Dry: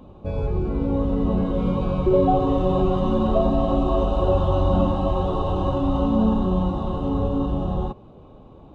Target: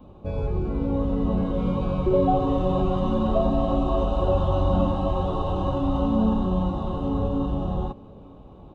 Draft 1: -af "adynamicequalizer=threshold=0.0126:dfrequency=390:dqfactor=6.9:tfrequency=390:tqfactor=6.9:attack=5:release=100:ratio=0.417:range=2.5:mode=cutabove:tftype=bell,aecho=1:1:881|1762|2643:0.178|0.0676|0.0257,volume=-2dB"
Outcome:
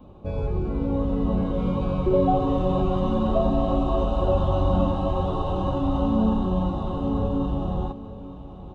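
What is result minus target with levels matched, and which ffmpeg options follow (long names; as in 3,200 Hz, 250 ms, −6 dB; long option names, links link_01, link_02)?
echo-to-direct +9.5 dB
-af "adynamicequalizer=threshold=0.0126:dfrequency=390:dqfactor=6.9:tfrequency=390:tqfactor=6.9:attack=5:release=100:ratio=0.417:range=2.5:mode=cutabove:tftype=bell,aecho=1:1:881|1762:0.0596|0.0226,volume=-2dB"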